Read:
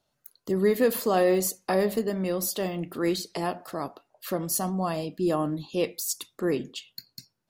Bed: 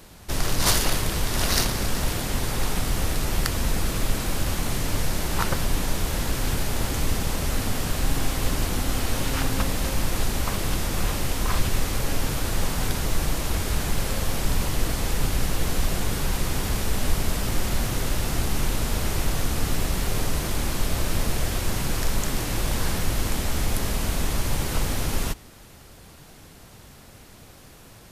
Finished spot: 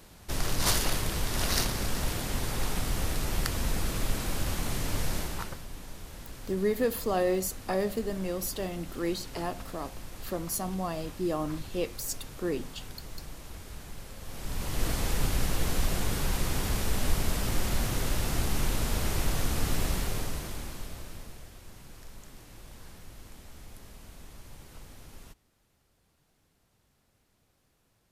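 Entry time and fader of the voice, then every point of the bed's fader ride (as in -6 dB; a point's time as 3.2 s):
6.00 s, -5.0 dB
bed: 5.18 s -5.5 dB
5.63 s -18.5 dB
14.18 s -18.5 dB
14.87 s -4 dB
19.91 s -4 dB
21.52 s -23.5 dB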